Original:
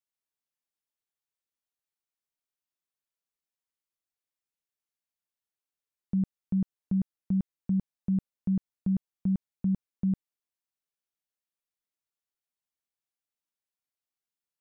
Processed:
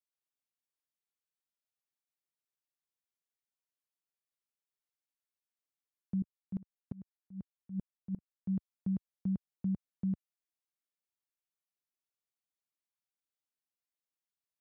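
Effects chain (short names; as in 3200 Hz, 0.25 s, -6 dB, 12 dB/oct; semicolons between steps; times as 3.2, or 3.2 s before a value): HPF 78 Hz; 6.22–8.5 dB-ramp tremolo swelling 5.7 Hz, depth 27 dB; gain -6 dB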